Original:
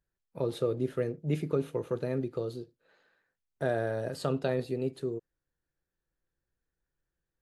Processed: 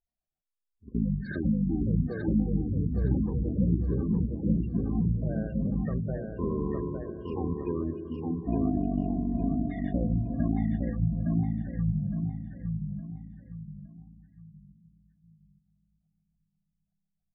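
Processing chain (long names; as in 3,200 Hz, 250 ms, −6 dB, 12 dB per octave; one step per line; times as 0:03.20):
delay with pitch and tempo change per echo 310 ms, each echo +7 semitones, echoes 2, each echo −6 dB
noise gate −38 dBFS, range −9 dB
in parallel at −2.5 dB: brickwall limiter −24.5 dBFS, peak gain reduction 10 dB
on the sum: wrong playback speed 78 rpm record played at 33 rpm
comb and all-pass reverb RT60 4.7 s, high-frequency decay 0.8×, pre-delay 35 ms, DRR 10 dB
gate on every frequency bin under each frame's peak −20 dB strong
on a send: repeating echo 863 ms, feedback 34%, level −4 dB
on the sum: level −1.5 dB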